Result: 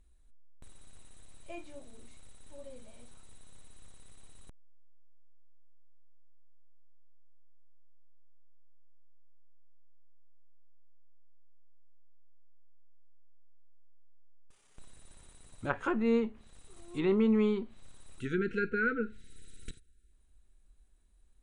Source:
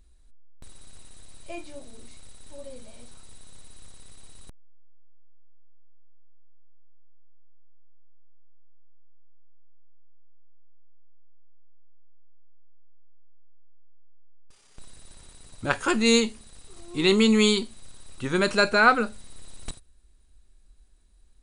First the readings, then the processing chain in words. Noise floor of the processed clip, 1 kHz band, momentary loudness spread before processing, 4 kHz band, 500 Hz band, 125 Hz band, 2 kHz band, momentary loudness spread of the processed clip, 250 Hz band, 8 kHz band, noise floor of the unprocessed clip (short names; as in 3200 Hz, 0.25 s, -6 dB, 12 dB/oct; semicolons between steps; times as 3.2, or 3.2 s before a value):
-62 dBFS, -13.5 dB, 22 LU, -24.5 dB, -7.5 dB, -6.5 dB, -11.5 dB, 21 LU, -6.5 dB, -21.5 dB, -56 dBFS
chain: spectral delete 18.2–20.11, 500–1300 Hz; treble ducked by the level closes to 1300 Hz, closed at -20 dBFS; bell 4800 Hz -8.5 dB 0.54 oct; gain -6.5 dB